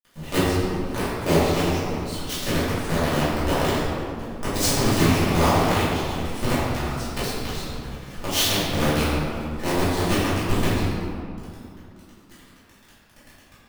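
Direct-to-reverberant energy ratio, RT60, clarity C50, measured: -13.0 dB, 2.6 s, -3.0 dB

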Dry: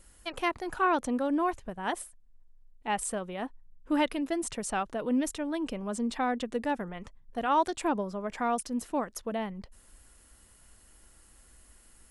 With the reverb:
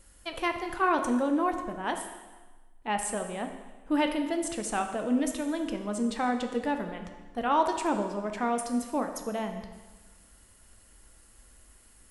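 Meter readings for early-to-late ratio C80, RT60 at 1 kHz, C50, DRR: 9.0 dB, 1.3 s, 7.5 dB, 5.0 dB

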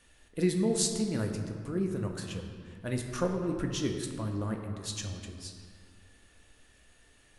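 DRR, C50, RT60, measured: 2.5 dB, 5.0 dB, 1.9 s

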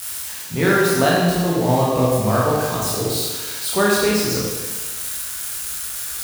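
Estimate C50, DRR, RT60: -1.0 dB, -6.0 dB, 1.3 s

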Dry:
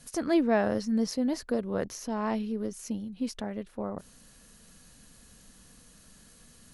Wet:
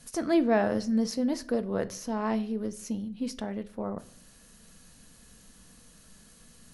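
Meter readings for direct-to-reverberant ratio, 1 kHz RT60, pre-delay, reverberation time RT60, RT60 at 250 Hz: 11.0 dB, 0.45 s, 4 ms, 0.50 s, 0.75 s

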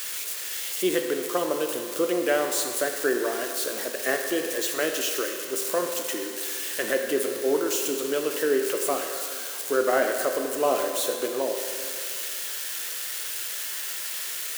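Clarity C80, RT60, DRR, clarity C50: 5.5 dB, 2.1 s, 3.0 dB, 4.5 dB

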